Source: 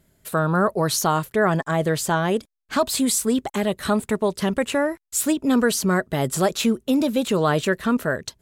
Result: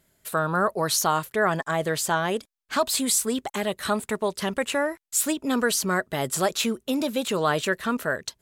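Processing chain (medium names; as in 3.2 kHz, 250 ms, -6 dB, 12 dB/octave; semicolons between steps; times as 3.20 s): bass shelf 440 Hz -9 dB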